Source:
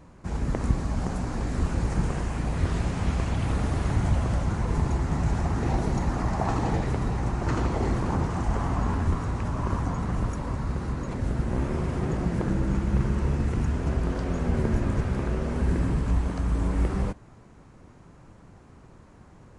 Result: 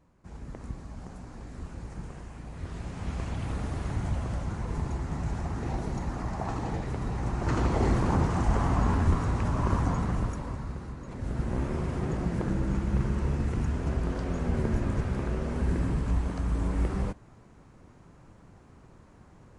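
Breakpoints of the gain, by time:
2.5 s -14 dB
3.23 s -6.5 dB
6.86 s -6.5 dB
7.81 s +1 dB
9.94 s +1 dB
11 s -10.5 dB
11.42 s -3 dB

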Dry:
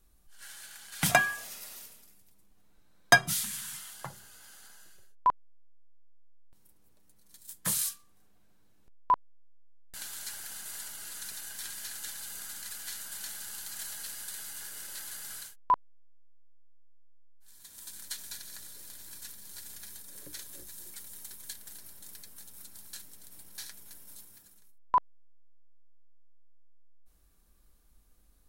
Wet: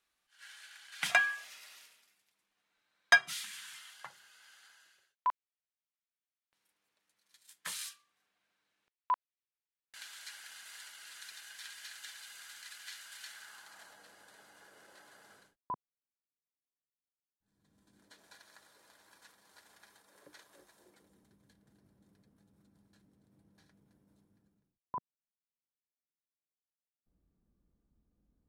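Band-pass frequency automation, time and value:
band-pass, Q 1
13.24 s 2300 Hz
13.99 s 540 Hz
15.29 s 540 Hz
15.73 s 180 Hz
17.86 s 180 Hz
18.4 s 880 Hz
20.67 s 880 Hz
21.3 s 180 Hz

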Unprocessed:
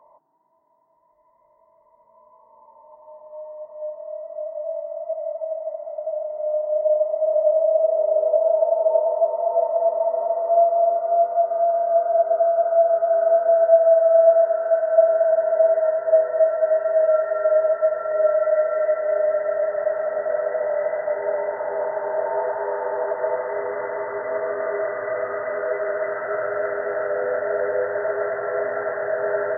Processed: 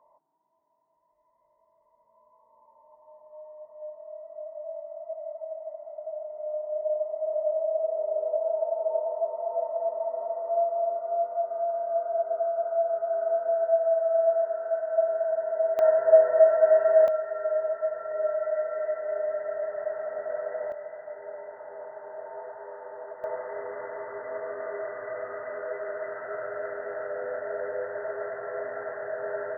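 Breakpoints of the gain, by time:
-9 dB
from 15.79 s 0 dB
from 17.08 s -9 dB
from 20.72 s -16 dB
from 23.24 s -9.5 dB

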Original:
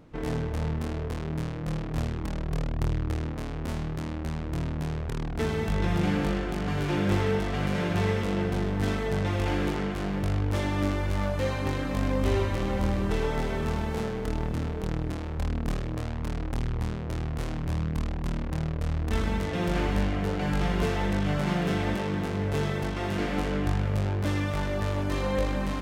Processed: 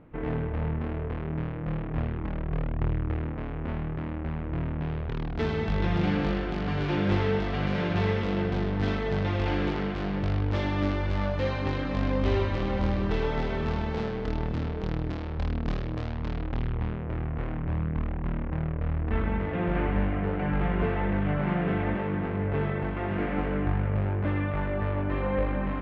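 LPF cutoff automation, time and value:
LPF 24 dB/oct
4.68 s 2600 Hz
5.41 s 4700 Hz
16.17 s 4700 Hz
17.16 s 2400 Hz

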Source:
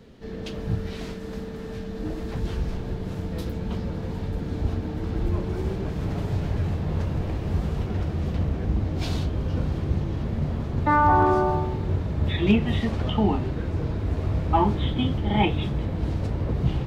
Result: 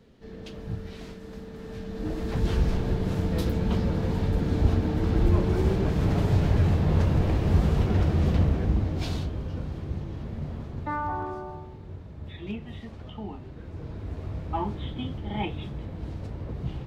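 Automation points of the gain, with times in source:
1.41 s -7 dB
2.55 s +4 dB
8.32 s +4 dB
9.6 s -7.5 dB
10.61 s -7.5 dB
11.41 s -15.5 dB
13.39 s -15.5 dB
14 s -9 dB

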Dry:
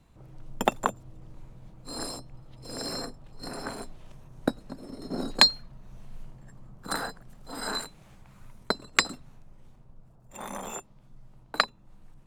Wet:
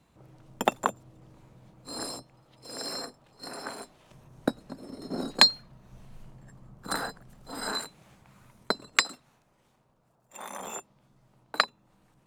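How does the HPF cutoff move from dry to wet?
HPF 6 dB/oct
170 Hz
from 2.23 s 440 Hz
from 4.11 s 110 Hz
from 5.92 s 43 Hz
from 7.71 s 150 Hz
from 8.97 s 630 Hz
from 10.6 s 260 Hz

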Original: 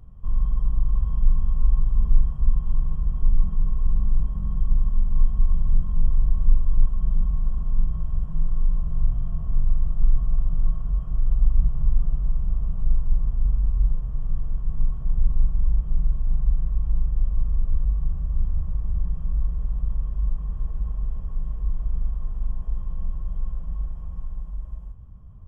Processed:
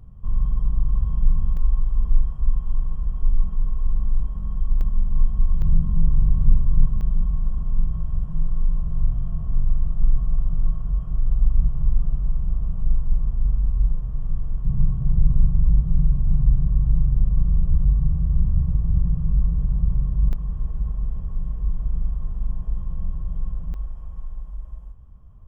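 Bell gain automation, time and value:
bell 130 Hz 2.1 oct
+4 dB
from 1.57 s -4 dB
from 4.81 s +2 dB
from 5.62 s +11 dB
from 7.01 s +3 dB
from 14.65 s +14 dB
from 20.33 s +6 dB
from 23.74 s -5.5 dB

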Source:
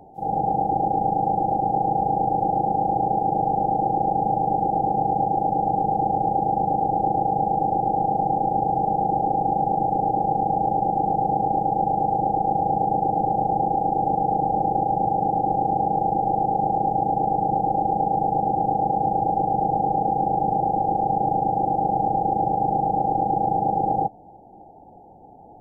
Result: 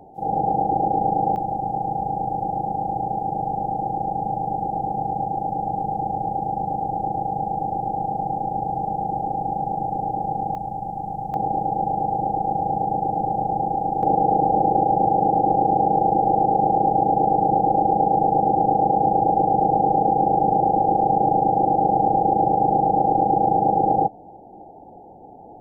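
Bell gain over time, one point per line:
bell 420 Hz 2.1 oct
+2 dB
from 1.36 s -5.5 dB
from 10.55 s -13 dB
from 11.34 s -2 dB
from 14.03 s +5.5 dB

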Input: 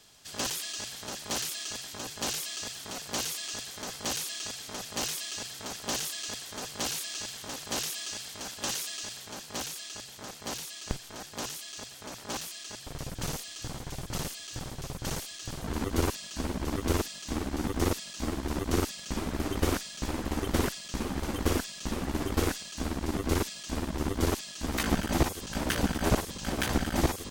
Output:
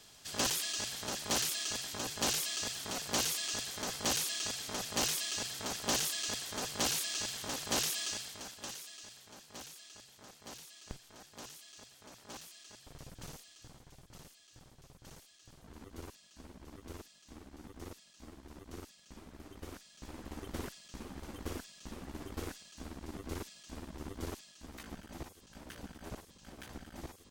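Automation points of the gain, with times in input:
8.07 s 0 dB
8.74 s -12.5 dB
13.11 s -12.5 dB
14.08 s -20 dB
19.69 s -20 dB
20.24 s -13.5 dB
24.3 s -13.5 dB
24.89 s -20 dB

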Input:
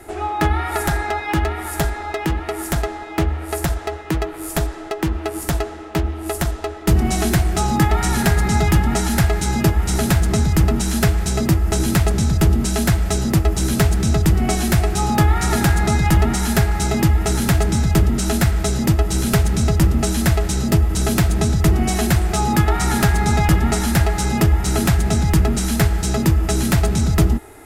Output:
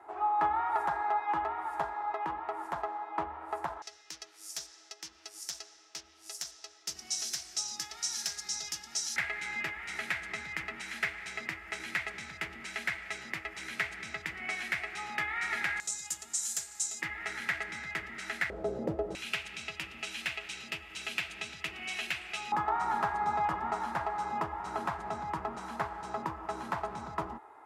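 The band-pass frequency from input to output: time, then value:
band-pass, Q 4.3
980 Hz
from 3.82 s 5600 Hz
from 9.16 s 2100 Hz
from 15.8 s 7200 Hz
from 17.02 s 2000 Hz
from 18.5 s 520 Hz
from 19.15 s 2600 Hz
from 22.52 s 1000 Hz

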